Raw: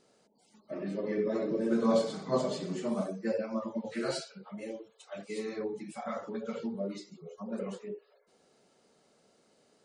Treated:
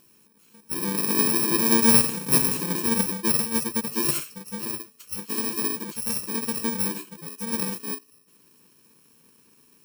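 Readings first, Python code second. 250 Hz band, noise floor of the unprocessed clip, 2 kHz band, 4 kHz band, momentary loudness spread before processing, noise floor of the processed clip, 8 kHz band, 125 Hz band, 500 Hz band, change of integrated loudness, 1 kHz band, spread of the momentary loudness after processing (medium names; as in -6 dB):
+6.5 dB, -68 dBFS, +13.0 dB, +15.0 dB, 15 LU, -59 dBFS, +26.0 dB, +9.0 dB, -0.5 dB, +12.0 dB, +8.0 dB, 16 LU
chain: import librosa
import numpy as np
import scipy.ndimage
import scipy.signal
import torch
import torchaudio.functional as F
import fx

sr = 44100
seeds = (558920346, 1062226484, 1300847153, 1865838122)

y = fx.bit_reversed(x, sr, seeds[0], block=64)
y = y * librosa.db_to_amplitude(9.0)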